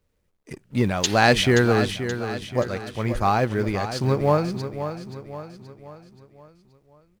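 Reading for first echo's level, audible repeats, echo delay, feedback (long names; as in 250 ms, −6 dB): −10.0 dB, 4, 527 ms, 47%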